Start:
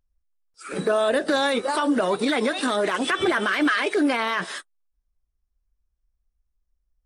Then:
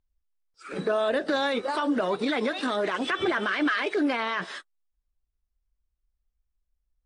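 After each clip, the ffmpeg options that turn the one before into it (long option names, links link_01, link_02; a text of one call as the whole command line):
ffmpeg -i in.wav -af "lowpass=5400,volume=-4dB" out.wav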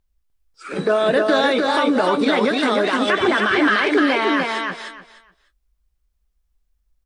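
ffmpeg -i in.wav -filter_complex "[0:a]asplit=2[link_01][link_02];[link_02]adelay=19,volume=-13.5dB[link_03];[link_01][link_03]amix=inputs=2:normalize=0,aecho=1:1:300|600|900:0.668|0.127|0.0241,volume=7.5dB" out.wav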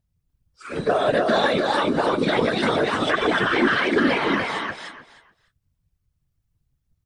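ffmpeg -i in.wav -af "afftfilt=real='hypot(re,im)*cos(2*PI*random(0))':imag='hypot(re,im)*sin(2*PI*random(1))':win_size=512:overlap=0.75,volume=3dB" out.wav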